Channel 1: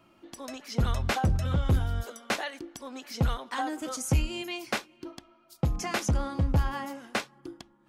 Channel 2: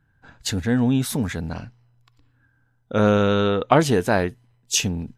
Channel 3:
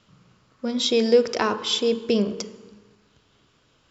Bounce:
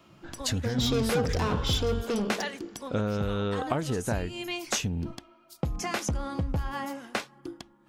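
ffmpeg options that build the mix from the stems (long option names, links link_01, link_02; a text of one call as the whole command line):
ffmpeg -i stem1.wav -i stem2.wav -i stem3.wav -filter_complex "[0:a]volume=2.5dB[link_01];[1:a]lowshelf=frequency=110:gain=10,agate=range=-33dB:threshold=-47dB:ratio=3:detection=peak,volume=-1.5dB[link_02];[2:a]asoftclip=type=tanh:threshold=-21.5dB,volume=-3dB[link_03];[link_01][link_02]amix=inputs=2:normalize=0,acompressor=threshold=-26dB:ratio=6,volume=0dB[link_04];[link_03][link_04]amix=inputs=2:normalize=0" out.wav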